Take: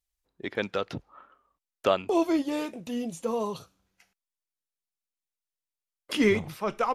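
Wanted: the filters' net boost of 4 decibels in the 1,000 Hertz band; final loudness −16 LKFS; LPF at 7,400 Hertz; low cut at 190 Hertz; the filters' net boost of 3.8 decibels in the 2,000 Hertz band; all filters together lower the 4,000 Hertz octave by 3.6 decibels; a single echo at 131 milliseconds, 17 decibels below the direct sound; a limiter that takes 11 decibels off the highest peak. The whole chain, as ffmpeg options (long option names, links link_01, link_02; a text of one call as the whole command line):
ffmpeg -i in.wav -af "highpass=190,lowpass=7400,equalizer=frequency=1000:width_type=o:gain=4,equalizer=frequency=2000:width_type=o:gain=5.5,equalizer=frequency=4000:width_type=o:gain=-8,alimiter=limit=-19dB:level=0:latency=1,aecho=1:1:131:0.141,volume=16dB" out.wav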